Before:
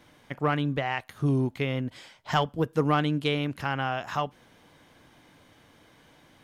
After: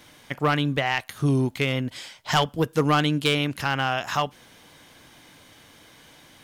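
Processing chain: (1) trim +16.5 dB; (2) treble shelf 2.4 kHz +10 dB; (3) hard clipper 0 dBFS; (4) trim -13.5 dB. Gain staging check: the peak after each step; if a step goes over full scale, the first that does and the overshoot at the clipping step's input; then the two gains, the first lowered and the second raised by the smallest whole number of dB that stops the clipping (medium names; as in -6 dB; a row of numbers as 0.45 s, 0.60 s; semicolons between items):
+4.0 dBFS, +8.0 dBFS, 0.0 dBFS, -13.5 dBFS; step 1, 8.0 dB; step 1 +8.5 dB, step 4 -5.5 dB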